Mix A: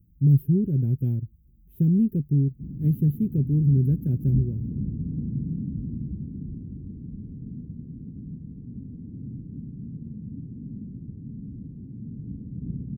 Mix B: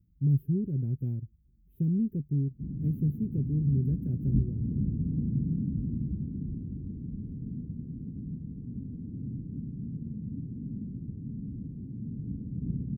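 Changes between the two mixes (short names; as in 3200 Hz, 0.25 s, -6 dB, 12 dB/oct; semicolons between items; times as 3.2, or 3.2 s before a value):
speech -7.0 dB; master: add high shelf 2200 Hz -8 dB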